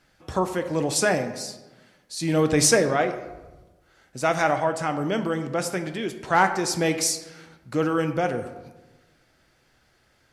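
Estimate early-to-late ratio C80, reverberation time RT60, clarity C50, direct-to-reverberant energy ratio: 12.0 dB, 1.2 s, 10.5 dB, 7.0 dB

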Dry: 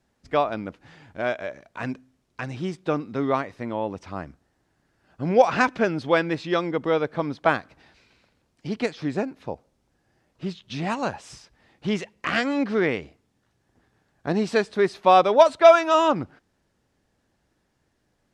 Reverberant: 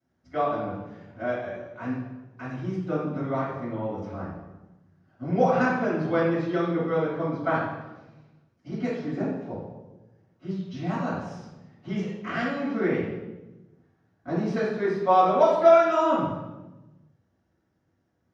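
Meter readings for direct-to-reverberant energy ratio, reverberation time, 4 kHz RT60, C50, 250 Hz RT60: -12.5 dB, 1.1 s, 0.80 s, 0.5 dB, 1.5 s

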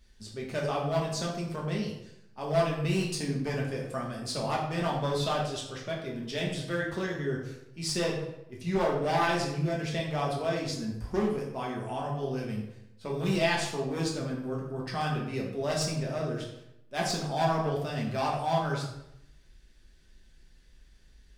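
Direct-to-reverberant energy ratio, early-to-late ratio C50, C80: -4.0 dB, 4.5 dB, 7.0 dB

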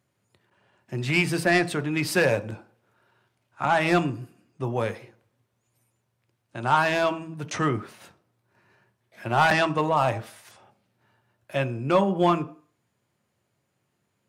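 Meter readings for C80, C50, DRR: 21.5 dB, 18.0 dB, 10.0 dB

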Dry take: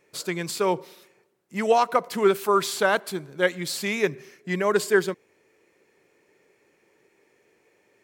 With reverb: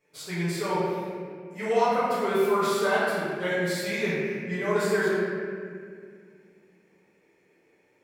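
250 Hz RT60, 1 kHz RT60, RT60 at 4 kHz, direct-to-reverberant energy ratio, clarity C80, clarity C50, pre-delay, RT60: 3.1 s, 1.8 s, 1.4 s, -12.5 dB, -1.0 dB, -3.5 dB, 4 ms, 2.1 s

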